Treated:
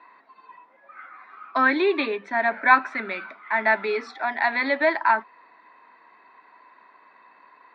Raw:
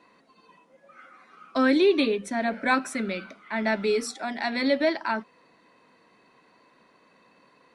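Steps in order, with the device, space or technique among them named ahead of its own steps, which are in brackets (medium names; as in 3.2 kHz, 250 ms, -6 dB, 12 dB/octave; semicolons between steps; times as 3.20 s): phone earpiece (cabinet simulation 500–3300 Hz, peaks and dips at 510 Hz -10 dB, 970 Hz +6 dB, 1.8 kHz +4 dB, 3 kHz -10 dB); trim +6 dB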